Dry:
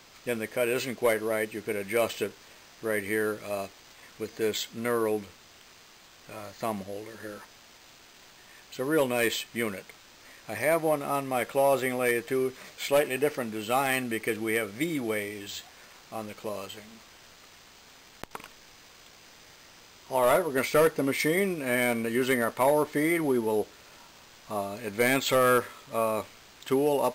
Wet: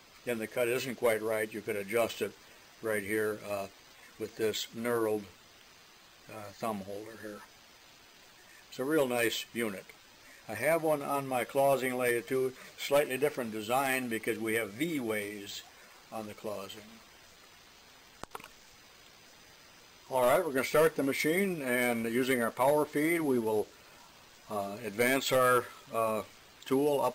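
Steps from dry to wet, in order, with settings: coarse spectral quantiser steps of 15 dB; trim -3 dB

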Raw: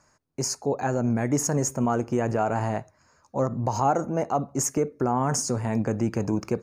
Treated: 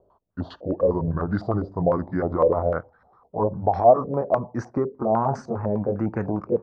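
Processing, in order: pitch bend over the whole clip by -7.5 st ending unshifted; step-sequenced low-pass 9.9 Hz 510–1600 Hz

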